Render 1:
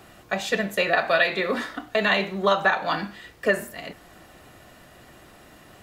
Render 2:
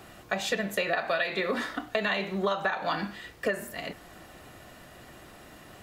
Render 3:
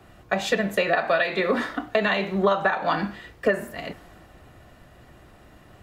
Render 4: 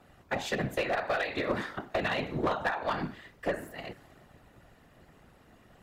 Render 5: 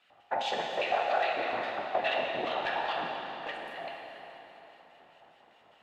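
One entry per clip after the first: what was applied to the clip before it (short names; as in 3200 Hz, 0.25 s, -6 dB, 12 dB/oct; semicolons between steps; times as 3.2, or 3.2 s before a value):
compressor 5:1, threshold -25 dBFS, peak gain reduction 10 dB
high shelf 2800 Hz -8.5 dB; three-band expander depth 40%; gain +7 dB
whisperiser; one-sided clip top -18 dBFS; gain -7.5 dB
LFO band-pass square 4.9 Hz 810–3000 Hz; plate-style reverb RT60 3.7 s, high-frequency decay 0.9×, DRR -1 dB; gain +5 dB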